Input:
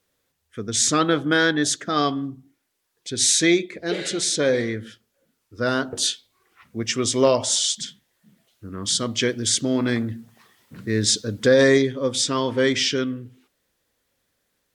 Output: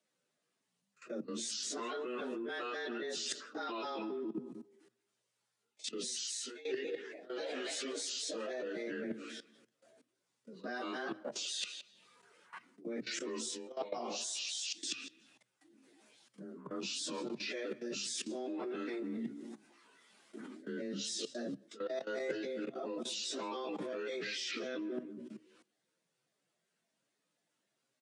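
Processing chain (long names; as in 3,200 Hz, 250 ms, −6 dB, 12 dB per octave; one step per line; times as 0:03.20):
pitch shifter gated in a rhythm −5 semitones, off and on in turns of 72 ms
on a send: feedback echo with a low-pass in the loop 94 ms, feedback 25%, low-pass 4,400 Hz, level −19.5 dB
on the sum: time stretch by phase vocoder 1.9×
output level in coarse steps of 18 dB
frequency shifter +120 Hz
reversed playback
downward compressor 10 to 1, threshold −44 dBFS, peak gain reduction 27 dB
reversed playback
downsampling to 22,050 Hz
level +7 dB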